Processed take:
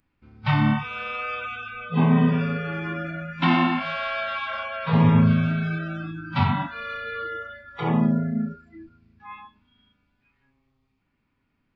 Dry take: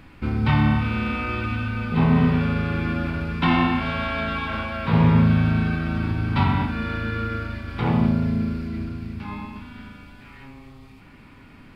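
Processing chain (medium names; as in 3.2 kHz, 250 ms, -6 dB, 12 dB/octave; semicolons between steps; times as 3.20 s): resampled via 16 kHz; spectral noise reduction 26 dB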